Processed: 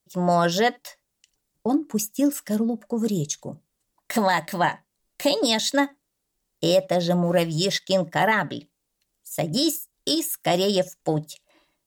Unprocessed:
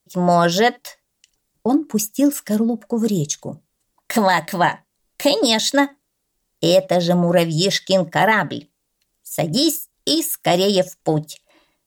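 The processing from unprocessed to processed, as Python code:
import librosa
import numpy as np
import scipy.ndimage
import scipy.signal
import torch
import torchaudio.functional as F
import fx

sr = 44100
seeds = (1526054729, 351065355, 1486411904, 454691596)

y = fx.law_mismatch(x, sr, coded='A', at=(7.24, 7.94), fade=0.02)
y = y * librosa.db_to_amplitude(-5.0)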